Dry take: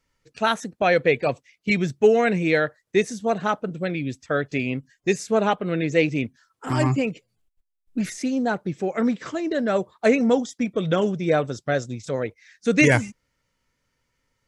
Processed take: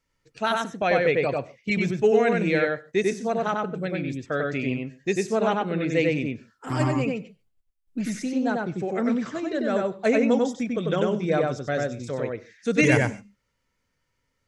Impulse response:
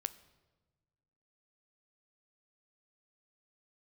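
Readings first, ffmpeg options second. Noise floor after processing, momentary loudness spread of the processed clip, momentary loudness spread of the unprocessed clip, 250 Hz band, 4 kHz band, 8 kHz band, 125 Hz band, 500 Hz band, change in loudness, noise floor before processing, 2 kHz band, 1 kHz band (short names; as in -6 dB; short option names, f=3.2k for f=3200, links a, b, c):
-75 dBFS, 10 LU, 10 LU, -1.5 dB, -3.0 dB, -3.5 dB, -2.0 dB, -1.5 dB, -2.0 dB, -77 dBFS, -2.5 dB, -1.5 dB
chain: -filter_complex "[0:a]asplit=2[a][b];[b]highshelf=f=3.7k:g=-8.5[c];[1:a]atrim=start_sample=2205,afade=t=out:st=0.2:d=0.01,atrim=end_sample=9261,adelay=95[d];[c][d]afir=irnorm=-1:irlink=0,volume=0dB[e];[a][e]amix=inputs=2:normalize=0,volume=-4dB"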